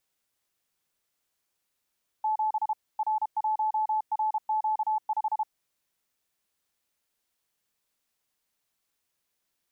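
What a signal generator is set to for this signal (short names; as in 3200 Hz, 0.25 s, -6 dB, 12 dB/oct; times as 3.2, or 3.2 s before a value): Morse "7 R1RQ5" 32 wpm 864 Hz -23.5 dBFS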